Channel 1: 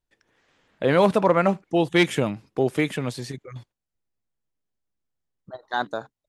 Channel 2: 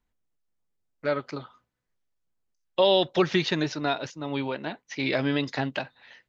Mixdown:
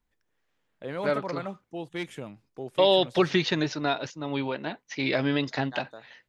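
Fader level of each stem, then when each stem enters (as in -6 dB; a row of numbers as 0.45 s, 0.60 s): -15.5 dB, 0.0 dB; 0.00 s, 0.00 s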